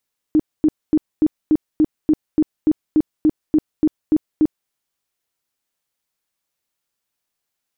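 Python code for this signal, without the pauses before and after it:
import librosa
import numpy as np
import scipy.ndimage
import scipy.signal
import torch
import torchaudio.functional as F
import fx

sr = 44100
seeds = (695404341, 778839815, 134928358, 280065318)

y = fx.tone_burst(sr, hz=308.0, cycles=14, every_s=0.29, bursts=15, level_db=-10.0)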